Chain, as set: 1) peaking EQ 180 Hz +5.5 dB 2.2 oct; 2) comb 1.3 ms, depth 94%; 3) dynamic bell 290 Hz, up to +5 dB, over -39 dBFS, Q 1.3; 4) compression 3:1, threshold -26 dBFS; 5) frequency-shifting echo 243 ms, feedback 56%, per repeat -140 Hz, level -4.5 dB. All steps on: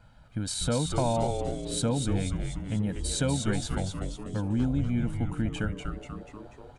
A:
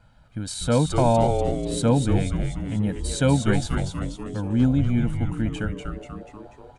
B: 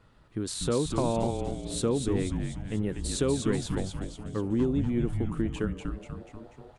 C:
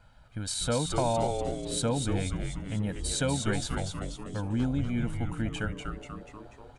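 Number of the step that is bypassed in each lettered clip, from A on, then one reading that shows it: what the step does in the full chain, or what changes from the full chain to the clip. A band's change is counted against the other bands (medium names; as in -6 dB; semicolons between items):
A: 4, momentary loudness spread change +4 LU; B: 2, 500 Hz band +5.0 dB; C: 1, loudness change -1.0 LU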